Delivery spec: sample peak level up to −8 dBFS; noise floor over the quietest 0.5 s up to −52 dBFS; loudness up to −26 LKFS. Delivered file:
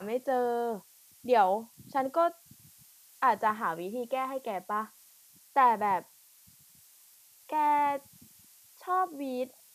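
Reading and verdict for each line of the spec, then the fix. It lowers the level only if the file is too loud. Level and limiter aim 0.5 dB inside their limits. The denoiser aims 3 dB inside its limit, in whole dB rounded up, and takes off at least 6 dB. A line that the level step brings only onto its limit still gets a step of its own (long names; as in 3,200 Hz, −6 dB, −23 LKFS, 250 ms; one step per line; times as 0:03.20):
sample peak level −12.0 dBFS: in spec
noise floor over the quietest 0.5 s −59 dBFS: in spec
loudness −30.0 LKFS: in spec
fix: no processing needed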